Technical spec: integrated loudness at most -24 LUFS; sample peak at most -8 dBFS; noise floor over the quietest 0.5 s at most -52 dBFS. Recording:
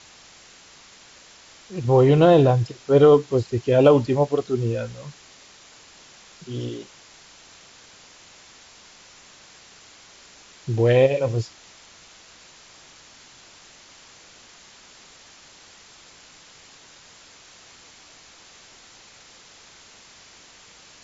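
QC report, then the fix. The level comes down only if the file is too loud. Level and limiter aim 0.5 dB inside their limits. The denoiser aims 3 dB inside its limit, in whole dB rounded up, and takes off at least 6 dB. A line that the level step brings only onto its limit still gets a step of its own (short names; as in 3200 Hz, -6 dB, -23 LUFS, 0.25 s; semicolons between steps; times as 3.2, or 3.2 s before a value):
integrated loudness -19.0 LUFS: fail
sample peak -5.0 dBFS: fail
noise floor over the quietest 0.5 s -49 dBFS: fail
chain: gain -5.5 dB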